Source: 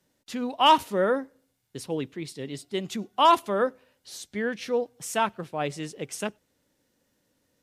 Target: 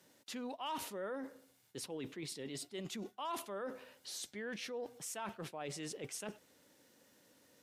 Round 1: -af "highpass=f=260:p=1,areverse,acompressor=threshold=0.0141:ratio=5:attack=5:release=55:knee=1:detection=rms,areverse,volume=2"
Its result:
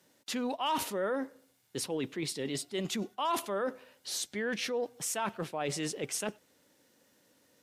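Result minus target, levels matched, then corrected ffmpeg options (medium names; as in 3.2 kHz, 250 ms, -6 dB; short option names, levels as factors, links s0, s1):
compression: peak gain reduction -9.5 dB
-af "highpass=f=260:p=1,areverse,acompressor=threshold=0.00355:ratio=5:attack=5:release=55:knee=1:detection=rms,areverse,volume=2"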